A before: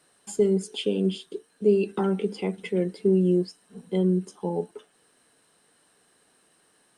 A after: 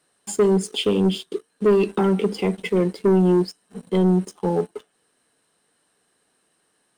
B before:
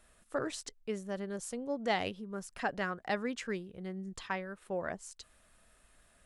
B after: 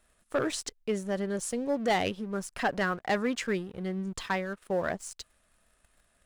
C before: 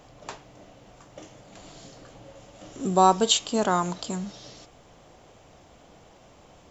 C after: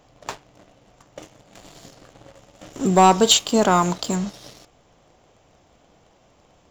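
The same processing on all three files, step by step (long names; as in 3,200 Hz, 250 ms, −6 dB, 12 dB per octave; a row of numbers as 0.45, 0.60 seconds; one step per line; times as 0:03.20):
leveller curve on the samples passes 2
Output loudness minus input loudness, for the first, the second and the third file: +4.5, +6.5, +5.5 LU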